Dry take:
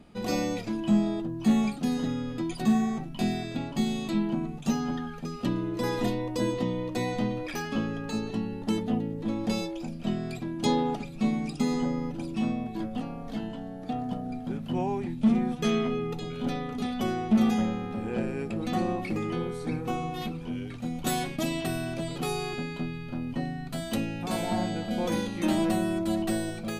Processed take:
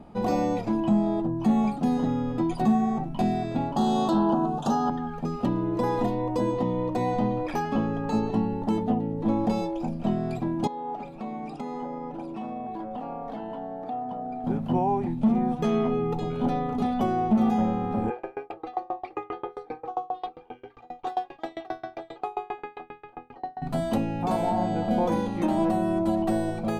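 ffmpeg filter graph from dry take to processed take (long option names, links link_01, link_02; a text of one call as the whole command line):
ffmpeg -i in.wav -filter_complex "[0:a]asettb=1/sr,asplit=3[link_01][link_02][link_03];[link_01]atrim=end=3.764[link_04];[link_02]atrim=start=3.76:end=4.9,asetpts=PTS-STARTPTS,afade=type=in:duration=0.004:curve=qsin,afade=type=out:start_time=1.136:duration=0.004:curve=qsin,asplit=2[link_05][link_06];[link_06]highpass=frequency=720:poles=1,volume=19dB,asoftclip=type=tanh:threshold=-14.5dB[link_07];[link_05][link_07]amix=inputs=2:normalize=0,lowpass=frequency=5300:poles=1,volume=-6dB,asuperstop=centerf=2200:order=4:qfactor=1.5[link_08];[link_03]atrim=start=4.896[link_09];[link_04][link_08]acrossfade=duration=0.004:curve1=hsin:curve2=qsin[link_10];[link_10][link_09]acrossfade=duration=0.004:curve1=qsin:curve2=hsin,asettb=1/sr,asplit=3[link_11][link_12][link_13];[link_11]atrim=end=10.674[link_14];[link_12]atrim=start=10.67:end=14.44,asetpts=PTS-STARTPTS,afade=type=in:duration=0.004:curve=qsin,afade=type=out:start_time=3.766:duration=0.004:curve=qsin,bass=frequency=250:gain=-13,treble=frequency=4000:gain=-8,acompressor=threshold=-38dB:ratio=4:attack=3.2:release=140:knee=1:detection=peak[link_15];[link_13]atrim=start=14.436[link_16];[link_14][link_15]acrossfade=duration=0.004:curve1=hsin:curve2=qsin[link_17];[link_17][link_16]acrossfade=duration=0.004:curve1=qsin:curve2=hsin,asettb=1/sr,asplit=3[link_18][link_19][link_20];[link_18]atrim=end=18.104[link_21];[link_19]atrim=start=18.1:end=23.62,asetpts=PTS-STARTPTS,afade=type=in:duration=0.004:curve=qsin,afade=type=out:start_time=5.516:duration=0.004:curve=qsin,acrossover=split=430 4700:gain=0.112 1 0.0794[link_22][link_23][link_24];[link_22][link_23][link_24]amix=inputs=3:normalize=0,aecho=1:1:2.5:0.98,atrim=end_sample=243432,aeval=exprs='val(0)*pow(10,-30*if(lt(mod(7.5*n/s,1),2*abs(7.5)/1000),1-mod(7.5*n/s,1)/(2*abs(7.5)/1000),(mod(7.5*n/s,1)-2*abs(7.5)/1000)/(1-2*abs(7.5)/1000))/20)':channel_layout=same[link_25];[link_20]atrim=start=23.616[link_26];[link_21][link_25]acrossfade=duration=0.004:curve1=hsin:curve2=qsin[link_27];[link_27][link_26]acrossfade=duration=0.004:curve1=qsin:curve2=hsin,equalizer=frequency=860:width=1.4:gain=11,alimiter=limit=-18.5dB:level=0:latency=1:release=359,tiltshelf=frequency=1100:gain=5.5" out.wav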